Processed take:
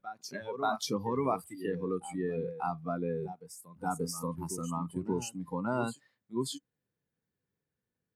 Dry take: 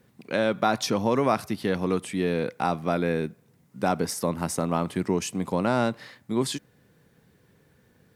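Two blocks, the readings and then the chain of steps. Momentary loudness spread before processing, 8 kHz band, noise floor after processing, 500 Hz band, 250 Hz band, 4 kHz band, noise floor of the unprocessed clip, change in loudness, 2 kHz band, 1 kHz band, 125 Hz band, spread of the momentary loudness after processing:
6 LU, -6.5 dB, under -85 dBFS, -9.0 dB, -9.0 dB, -9.0 dB, -62 dBFS, -8.5 dB, -12.0 dB, -7.5 dB, -8.0 dB, 9 LU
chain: reverse echo 0.585 s -7 dB; spectral noise reduction 21 dB; gain -7 dB

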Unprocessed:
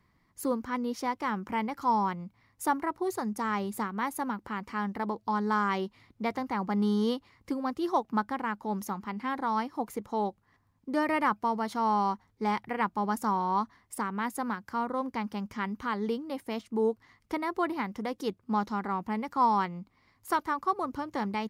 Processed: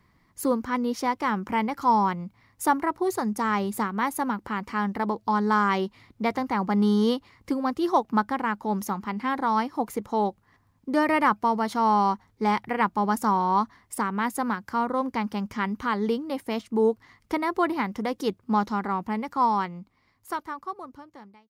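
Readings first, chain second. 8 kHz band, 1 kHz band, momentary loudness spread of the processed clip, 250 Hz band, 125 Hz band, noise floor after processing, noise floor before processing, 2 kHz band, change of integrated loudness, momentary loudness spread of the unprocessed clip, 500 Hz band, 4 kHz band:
+5.5 dB, +5.0 dB, 9 LU, +5.0 dB, +5.0 dB, -66 dBFS, -70 dBFS, +5.0 dB, +5.0 dB, 8 LU, +5.5 dB, +5.0 dB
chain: ending faded out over 3.00 s; gain +5.5 dB

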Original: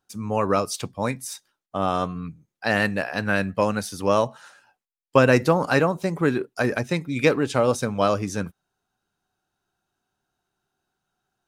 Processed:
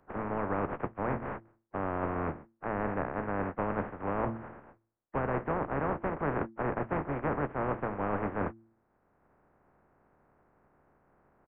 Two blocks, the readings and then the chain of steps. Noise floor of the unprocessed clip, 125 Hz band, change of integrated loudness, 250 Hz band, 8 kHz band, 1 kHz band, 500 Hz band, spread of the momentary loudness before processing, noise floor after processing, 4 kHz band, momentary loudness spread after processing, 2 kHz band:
-83 dBFS, -10.0 dB, -11.0 dB, -10.0 dB, under -40 dB, -7.5 dB, -11.5 dB, 11 LU, -74 dBFS, under -25 dB, 6 LU, -13.5 dB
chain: spectral contrast lowered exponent 0.13; in parallel at 0 dB: limiter -8.5 dBFS, peak gain reduction 9.5 dB; on the sum: Gaussian blur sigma 6.8 samples; de-hum 112.4 Hz, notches 3; reverse; compressor 6:1, threshold -35 dBFS, peak gain reduction 17.5 dB; reverse; doubler 14 ms -13 dB; three-band squash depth 40%; gain +6 dB

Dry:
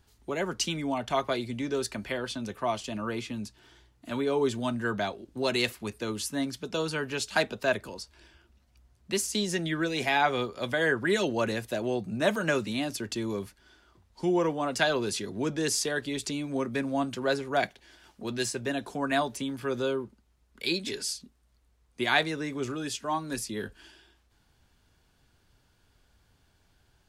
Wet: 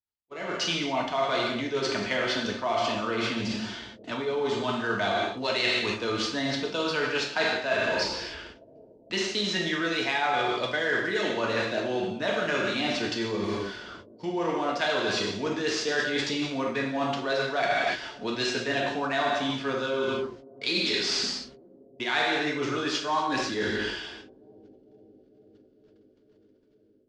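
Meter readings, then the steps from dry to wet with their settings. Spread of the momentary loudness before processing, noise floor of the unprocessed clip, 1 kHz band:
9 LU, -67 dBFS, +3.5 dB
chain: switching dead time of 0.051 ms; non-linear reverb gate 0.33 s falling, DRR -1.5 dB; reverse; compressor 12:1, threshold -38 dBFS, peak gain reduction 21.5 dB; reverse; low shelf 470 Hz -8.5 dB; AGC gain up to 17 dB; gate -45 dBFS, range -35 dB; LPF 5700 Hz 24 dB/oct; analogue delay 0.451 s, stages 2048, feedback 78%, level -23 dB

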